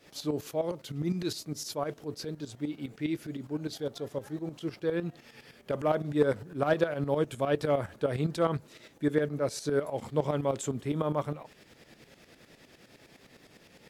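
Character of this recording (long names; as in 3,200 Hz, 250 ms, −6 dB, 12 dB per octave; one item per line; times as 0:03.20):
a quantiser's noise floor 12 bits, dither triangular
tremolo saw up 9.8 Hz, depth 75%
Ogg Vorbis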